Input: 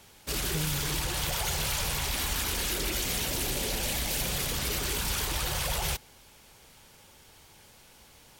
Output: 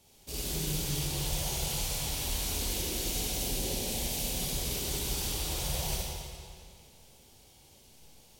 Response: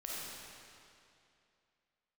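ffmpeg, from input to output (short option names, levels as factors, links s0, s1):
-filter_complex "[0:a]equalizer=f=1500:t=o:w=1.3:g=-13.5[s0];[1:a]atrim=start_sample=2205,asetrate=52920,aresample=44100[s1];[s0][s1]afir=irnorm=-1:irlink=0"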